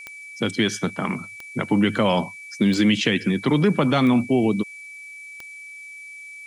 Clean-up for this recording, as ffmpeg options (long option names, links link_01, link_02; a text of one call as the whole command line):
ffmpeg -i in.wav -af "adeclick=threshold=4,bandreject=frequency=2300:width=30,afftdn=noise_reduction=27:noise_floor=-40" out.wav